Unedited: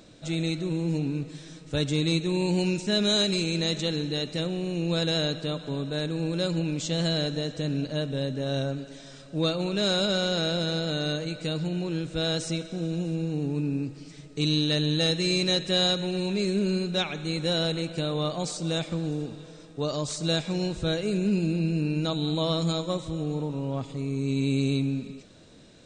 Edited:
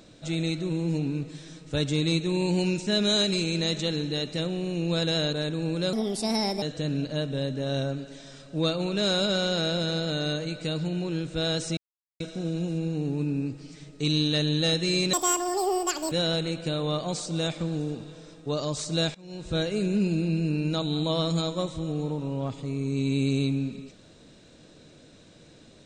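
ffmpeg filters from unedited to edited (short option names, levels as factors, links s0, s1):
-filter_complex "[0:a]asplit=8[s0][s1][s2][s3][s4][s5][s6][s7];[s0]atrim=end=5.332[s8];[s1]atrim=start=5.898:end=6.504[s9];[s2]atrim=start=6.5:end=7.42,asetpts=PTS-STARTPTS,asetrate=58653,aresample=44100,atrim=end_sample=30505,asetpts=PTS-STARTPTS[s10];[s3]atrim=start=7.416:end=12.57,asetpts=PTS-STARTPTS,afade=t=out:st=5.15:d=0.004:c=hsin,apad=pad_dur=0.43[s11];[s4]atrim=start=12.57:end=15.504,asetpts=PTS-STARTPTS,afade=t=in:d=0.004:c=hsin[s12];[s5]atrim=start=15.5:end=17.43,asetpts=PTS-STARTPTS,asetrate=86436,aresample=44100[s13];[s6]atrim=start=17.426:end=20.46,asetpts=PTS-STARTPTS,afade=t=out:st=3.03:d=0.004:c=hsin:silence=0.0794328[s14];[s7]atrim=start=20.46,asetpts=PTS-STARTPTS,afade=t=in:d=0.4:c=qua:silence=0.0794328[s15];[s8][s9]acrossfade=d=0.004:c1=hsin:c2=hsin[s16];[s16][s10]acrossfade=d=0.004:c1=hsin:c2=hsin[s17];[s11][s12]concat=n=2:v=0:a=1[s18];[s17][s18]acrossfade=d=0.004:c1=hsin:c2=hsin[s19];[s19][s13]acrossfade=d=0.004:c1=hsin:c2=hsin[s20];[s14][s15]concat=n=2:v=0:a=1[s21];[s20][s21]acrossfade=d=0.004:c1=hsin:c2=hsin"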